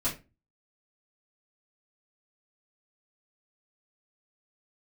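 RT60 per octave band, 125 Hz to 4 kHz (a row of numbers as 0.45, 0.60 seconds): 0.50, 0.40, 0.30, 0.25, 0.25, 0.20 seconds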